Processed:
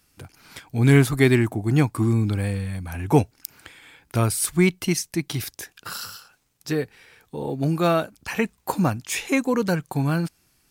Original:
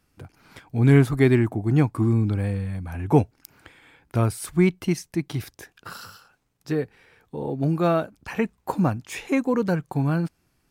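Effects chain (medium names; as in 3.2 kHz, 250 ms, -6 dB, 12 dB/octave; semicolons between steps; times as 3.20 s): treble shelf 2.4 kHz +11.5 dB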